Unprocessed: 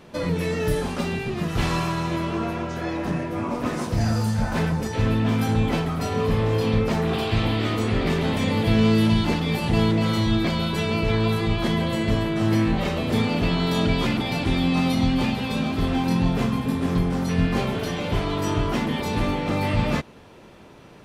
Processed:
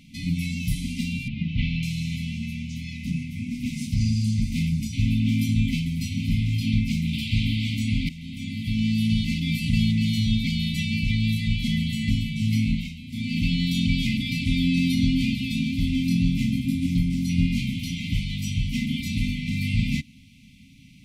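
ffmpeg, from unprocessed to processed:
-filter_complex "[0:a]asettb=1/sr,asplit=3[a][b][c];[a]atrim=end=1.284[d];[b]atrim=start=1.28:end=1.83,asetpts=PTS-STARTPTS,afade=t=in:d=0.004:c=qsin,afade=t=out:st=0.546:d=0.004:c=qsin,lowpass=f=3.4k:w=0.5412,lowpass=f=3.4k:w=1.3066[e];[c]atrim=start=1.826[f];[d][e]acrossfade=d=0.004:c1=hsin:c2=qsin[g];[g][f]acrossfade=d=0.004:c1=qsin:c2=hsin,asettb=1/sr,asplit=3[h][i][j];[h]atrim=end=3.944[k];[i]atrim=start=3.94:end=4.42,asetpts=PTS-STARTPTS,afade=t=in:d=0.004:c=qsin,afade=t=out:st=0.476:d=0.004:c=qsin,lowpass=8k[l];[j]atrim=start=4.416[m];[k][l]acrossfade=d=0.004:c1=hsin:c2=qsin[n];[n][m]acrossfade=d=0.004:c1=qsin:c2=hsin,asplit=4[o][p][q][r];[o]atrim=end=8.09,asetpts=PTS-STARTPTS,afade=t=out:st=8.086:d=0.004:c=hsin:silence=0.158489[s];[p]atrim=start=8.09:end=13.04,asetpts=PTS-STARTPTS,afade=t=in:d=1.47:silence=0.158489,afade=t=out:st=4.64:d=0.31:c=qua:silence=0.237137[t];[q]atrim=start=13.04:end=13.05,asetpts=PTS-STARTPTS,volume=-12.5dB[u];[r]atrim=start=13.05,asetpts=PTS-STARTPTS,afade=t=in:d=0.31:c=qua:silence=0.237137[v];[s][t][u][v]concat=n=4:v=0:a=1,afftfilt=real='re*(1-between(b*sr/4096,290,2000))':imag='im*(1-between(b*sr/4096,290,2000))':win_size=4096:overlap=0.75"

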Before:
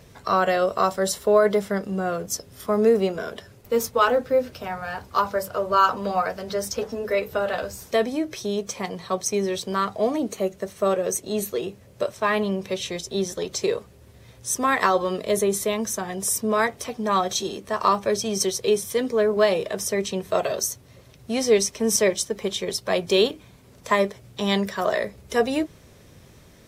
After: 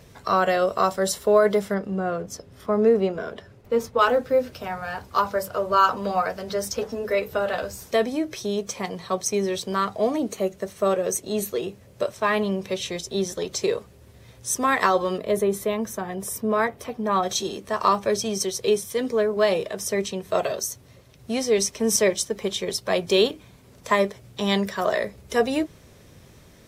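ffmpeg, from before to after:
-filter_complex "[0:a]asettb=1/sr,asplit=3[a][b][c];[a]atrim=end=1.744[d];[b]atrim=start=1.74:end=3.99,asetpts=PTS-STARTPTS,afade=t=in:d=0.004:c=qsin,afade=t=out:st=2.246:d=0.004:c=qsin,lowpass=f=2.2k:p=1[e];[c]atrim=start=3.986[f];[d][e]acrossfade=d=0.004:c1=hsin:c2=qsin[g];[g][f]acrossfade=d=0.004:c1=qsin:c2=hsin,asettb=1/sr,asplit=3[h][i][j];[h]atrim=end=15.184[k];[i]atrim=start=15.18:end=17.23,asetpts=PTS-STARTPTS,afade=t=in:d=0.004:c=qsin,afade=t=out:st=2.046:d=0.004:c=qsin,equalizer=f=6.6k:w=0.52:g=-10[l];[j]atrim=start=17.226[m];[k][l]acrossfade=d=0.004:c1=hsin:c2=qsin[n];[n][m]acrossfade=d=0.004:c1=qsin:c2=hsin,asettb=1/sr,asplit=3[o][p][q];[o]atrim=end=18.244[r];[p]atrim=start=18.24:end=21.58,asetpts=PTS-STARTPTS,afade=t=in:d=0.004:c=qsin,afade=t=out:st=3.336:d=0.004:c=qsin,tremolo=f=2.3:d=0.3[s];[q]atrim=start=21.576[t];[r][s]acrossfade=d=0.004:c1=hsin:c2=qsin[u];[u][t]acrossfade=d=0.004:c1=qsin:c2=hsin"

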